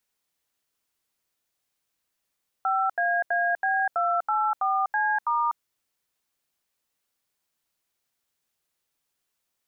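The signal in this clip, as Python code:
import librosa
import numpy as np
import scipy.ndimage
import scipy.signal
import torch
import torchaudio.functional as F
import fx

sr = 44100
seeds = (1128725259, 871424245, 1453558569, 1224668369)

y = fx.dtmf(sr, digits='5AAB284C*', tone_ms=247, gap_ms=80, level_db=-24.0)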